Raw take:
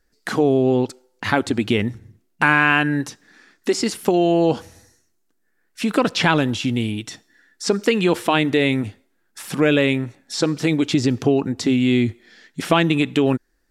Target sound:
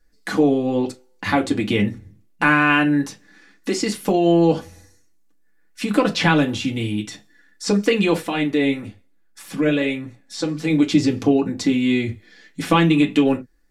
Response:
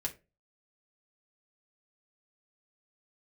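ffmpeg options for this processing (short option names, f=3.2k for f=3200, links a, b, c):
-filter_complex "[0:a]asettb=1/sr,asplit=3[a][b][c];[a]atrim=end=8.214[d];[b]atrim=start=8.21:end=10.7,asetpts=PTS-STARTPTS,afade=t=in:d=0.004:c=qsin,afade=t=out:st=2.486:d=0.004:c=qsin,flanger=delay=0.2:depth=7.1:regen=72:speed=1.1:shape=sinusoidal[e];[c]atrim=start=10.696[f];[d][e]acrossfade=d=0.004:c1=hsin:c2=qsin[g];[g][f]acrossfade=d=0.004:c1=qsin:c2=hsin[h];[1:a]atrim=start_sample=2205,afade=t=out:st=0.16:d=0.01,atrim=end_sample=7497,asetrate=52920,aresample=44100[i];[h][i]afir=irnorm=-1:irlink=0"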